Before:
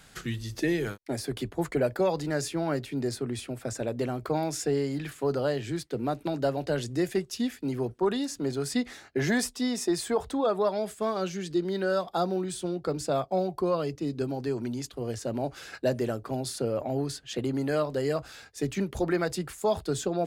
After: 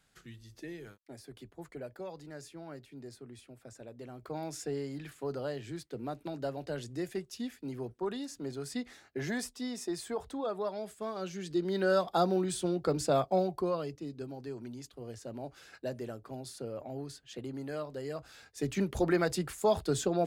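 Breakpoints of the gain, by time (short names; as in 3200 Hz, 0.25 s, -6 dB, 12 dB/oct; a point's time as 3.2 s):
4.01 s -17 dB
4.46 s -9 dB
11.12 s -9 dB
11.91 s 0 dB
13.29 s 0 dB
14.15 s -11 dB
18.1 s -11 dB
18.85 s -1 dB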